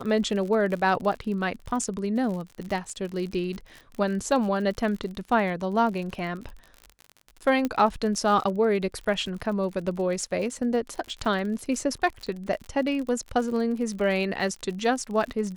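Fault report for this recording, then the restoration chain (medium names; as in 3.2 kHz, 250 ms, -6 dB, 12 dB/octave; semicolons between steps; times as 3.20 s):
crackle 48 per s -33 dBFS
7.65 s: pop -14 dBFS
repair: de-click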